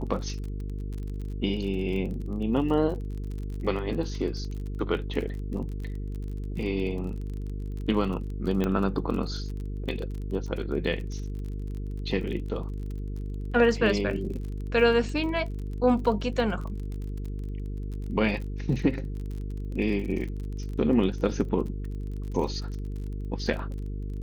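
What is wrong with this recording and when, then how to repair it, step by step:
buzz 50 Hz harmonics 9 -33 dBFS
crackle 32/s -35 dBFS
8.64 pop -15 dBFS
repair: de-click; de-hum 50 Hz, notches 9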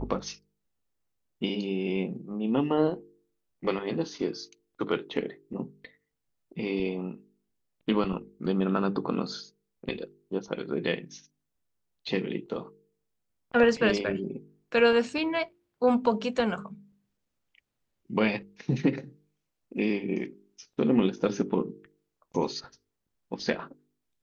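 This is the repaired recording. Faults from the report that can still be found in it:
8.64 pop

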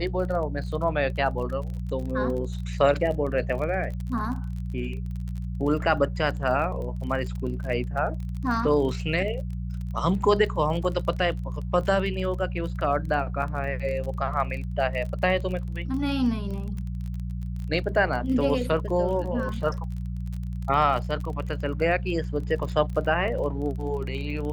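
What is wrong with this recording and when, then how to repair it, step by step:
crackle 30/s -33 dBFS
hum 60 Hz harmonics 3 -31 dBFS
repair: de-click; de-hum 60 Hz, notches 3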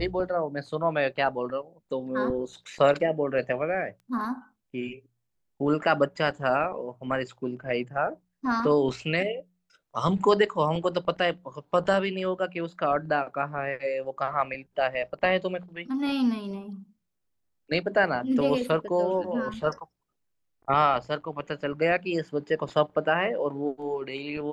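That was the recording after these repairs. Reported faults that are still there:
none

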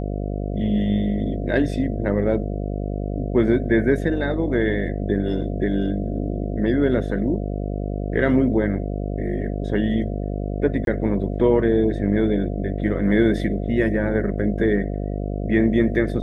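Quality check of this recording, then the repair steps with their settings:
buzz 50 Hz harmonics 14 -26 dBFS
10.85–10.87 gap 22 ms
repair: de-hum 50 Hz, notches 14; interpolate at 10.85, 22 ms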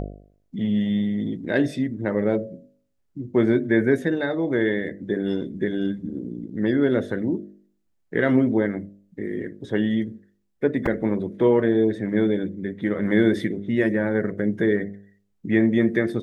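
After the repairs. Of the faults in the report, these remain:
none

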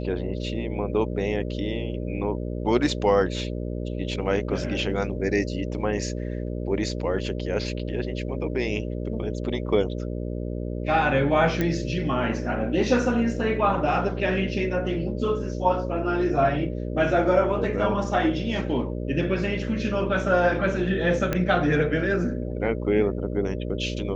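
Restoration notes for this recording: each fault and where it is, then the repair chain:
buzz 60 Hz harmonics 10 -30 dBFS
11.61 pop -12 dBFS
21.33 pop -11 dBFS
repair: de-click; de-hum 60 Hz, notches 10

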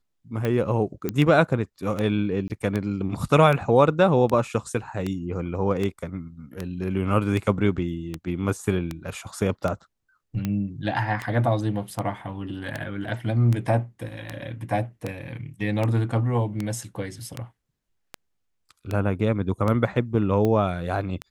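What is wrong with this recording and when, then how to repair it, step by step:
tick 78 rpm -14 dBFS
1.09 pop -12 dBFS
2.48–2.5 gap 19 ms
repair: de-click; interpolate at 2.48, 19 ms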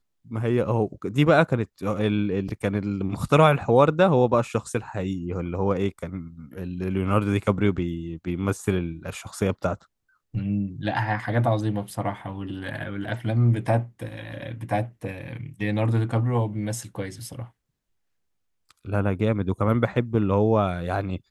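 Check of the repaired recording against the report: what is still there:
none

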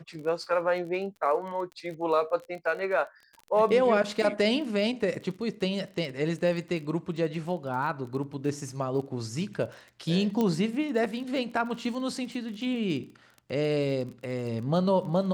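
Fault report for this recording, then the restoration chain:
crackle 31/s -37 dBFS
10.41 pop -16 dBFS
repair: de-click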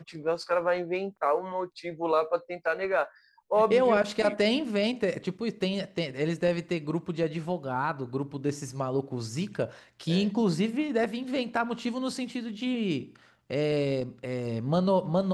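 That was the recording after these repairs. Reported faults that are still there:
10.41 pop

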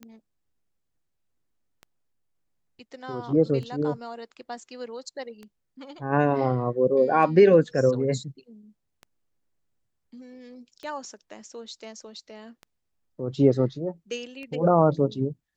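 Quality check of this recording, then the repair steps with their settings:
tick 33 1/3 rpm -27 dBFS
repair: de-click

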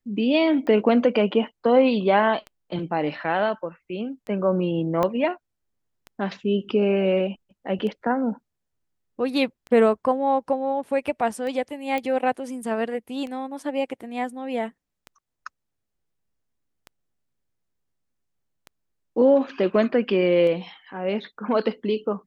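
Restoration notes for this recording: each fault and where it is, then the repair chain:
tick 33 1/3 rpm -23 dBFS
5.03 pop -11 dBFS
11.98 pop -15 dBFS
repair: de-click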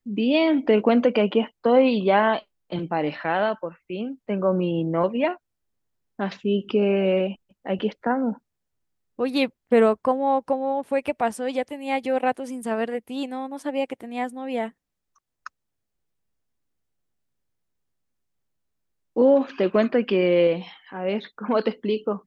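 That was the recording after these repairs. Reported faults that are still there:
5.03 pop

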